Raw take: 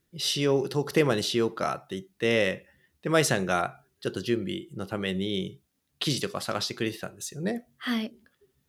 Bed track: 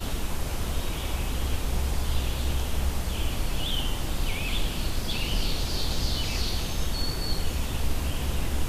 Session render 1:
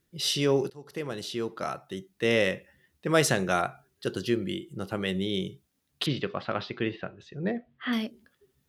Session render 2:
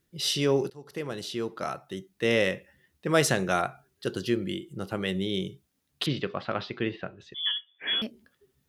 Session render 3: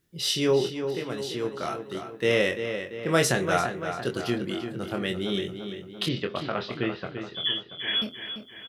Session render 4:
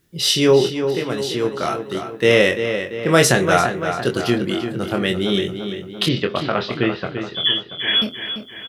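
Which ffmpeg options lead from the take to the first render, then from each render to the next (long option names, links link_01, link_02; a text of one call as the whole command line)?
ffmpeg -i in.wav -filter_complex "[0:a]asettb=1/sr,asplit=3[link_01][link_02][link_03];[link_01]atrim=end=6.064[link_04];[link_02]atrim=start=6.06:end=7.93,asetpts=PTS-STARTPTS,afade=type=in:duration=0.004:curve=qsin,afade=type=out:start_time=1.866:duration=0.004:curve=qsin,lowpass=frequency=3200:width=0.5412,lowpass=frequency=3200:width=1.3066[link_05];[link_03]atrim=start=7.926[link_06];[link_04][link_05]acrossfade=duration=0.004:curve1=hsin:curve2=qsin[link_07];[link_07][link_06]acrossfade=duration=0.004:curve1=qsin:curve2=hsin,asplit=2[link_08][link_09];[link_08]atrim=end=0.7,asetpts=PTS-STARTPTS,afade=type=out:start_time=0.696:duration=0.004:curve=hsin:silence=0.0668344[link_10];[link_09]atrim=start=0.7,asetpts=PTS-STARTPTS,afade=type=in:duration=1.6:silence=0.0668344[link_11];[link_10][link_11]concat=n=2:v=0:a=1" out.wav
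ffmpeg -i in.wav -filter_complex "[0:a]asettb=1/sr,asplit=3[link_01][link_02][link_03];[link_01]atrim=end=7.344[link_04];[link_02]atrim=start=7.34:end=8.02,asetpts=PTS-STARTPTS,afade=type=in:duration=0.004:curve=qsin,afade=type=out:start_time=0.676:duration=0.004:curve=qsin,lowpass=frequency=3100:width_type=q:width=0.5098,lowpass=frequency=3100:width_type=q:width=0.6013,lowpass=frequency=3100:width_type=q:width=0.9,lowpass=frequency=3100:width_type=q:width=2.563,afreqshift=-3600[link_05];[link_03]atrim=start=8.016[link_06];[link_04][link_05]acrossfade=duration=0.004:curve1=hsin:curve2=qsin[link_07];[link_07][link_06]acrossfade=duration=0.004:curve1=qsin:curve2=hsin" out.wav
ffmpeg -i in.wav -filter_complex "[0:a]asplit=2[link_01][link_02];[link_02]adelay=24,volume=-5.5dB[link_03];[link_01][link_03]amix=inputs=2:normalize=0,asplit=2[link_04][link_05];[link_05]adelay=341,lowpass=frequency=4200:poles=1,volume=-8dB,asplit=2[link_06][link_07];[link_07]adelay=341,lowpass=frequency=4200:poles=1,volume=0.54,asplit=2[link_08][link_09];[link_09]adelay=341,lowpass=frequency=4200:poles=1,volume=0.54,asplit=2[link_10][link_11];[link_11]adelay=341,lowpass=frequency=4200:poles=1,volume=0.54,asplit=2[link_12][link_13];[link_13]adelay=341,lowpass=frequency=4200:poles=1,volume=0.54,asplit=2[link_14][link_15];[link_15]adelay=341,lowpass=frequency=4200:poles=1,volume=0.54[link_16];[link_04][link_06][link_08][link_10][link_12][link_14][link_16]amix=inputs=7:normalize=0" out.wav
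ffmpeg -i in.wav -af "volume=9dB,alimiter=limit=-1dB:level=0:latency=1" out.wav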